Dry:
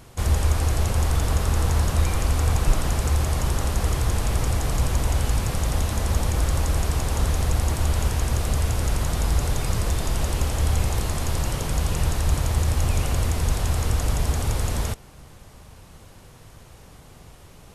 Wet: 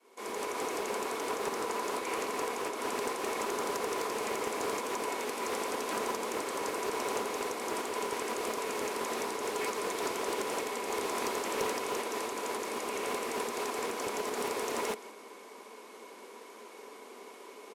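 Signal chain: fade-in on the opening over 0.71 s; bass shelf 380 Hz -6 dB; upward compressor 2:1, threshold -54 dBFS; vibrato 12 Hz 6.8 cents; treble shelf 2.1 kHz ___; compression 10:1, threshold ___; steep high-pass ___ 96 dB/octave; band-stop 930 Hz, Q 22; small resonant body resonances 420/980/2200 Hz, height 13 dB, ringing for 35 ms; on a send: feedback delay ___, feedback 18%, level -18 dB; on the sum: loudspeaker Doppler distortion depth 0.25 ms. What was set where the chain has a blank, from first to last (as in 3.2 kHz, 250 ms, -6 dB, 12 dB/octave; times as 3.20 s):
-2.5 dB, -28 dBFS, 210 Hz, 173 ms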